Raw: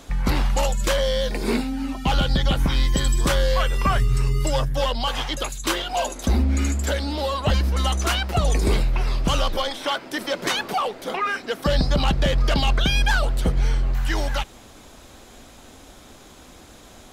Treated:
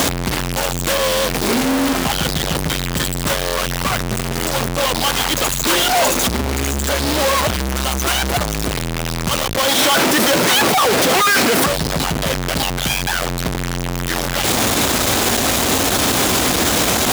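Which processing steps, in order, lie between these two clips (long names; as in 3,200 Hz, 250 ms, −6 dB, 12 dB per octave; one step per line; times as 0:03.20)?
sign of each sample alone
high-pass filter 79 Hz 12 dB per octave
brickwall limiter −18 dBFS, peak gain reduction 4.5 dB
level +8 dB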